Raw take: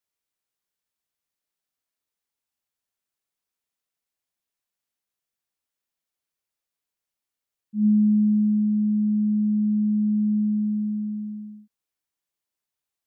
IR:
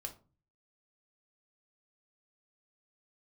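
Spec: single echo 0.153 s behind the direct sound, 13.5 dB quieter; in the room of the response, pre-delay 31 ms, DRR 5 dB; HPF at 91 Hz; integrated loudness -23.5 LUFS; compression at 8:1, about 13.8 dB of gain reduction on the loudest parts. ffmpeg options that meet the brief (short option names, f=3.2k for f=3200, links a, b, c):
-filter_complex "[0:a]highpass=91,acompressor=threshold=-32dB:ratio=8,aecho=1:1:153:0.211,asplit=2[a][b];[1:a]atrim=start_sample=2205,adelay=31[c];[b][c]afir=irnorm=-1:irlink=0,volume=-2.5dB[d];[a][d]amix=inputs=2:normalize=0,volume=12dB"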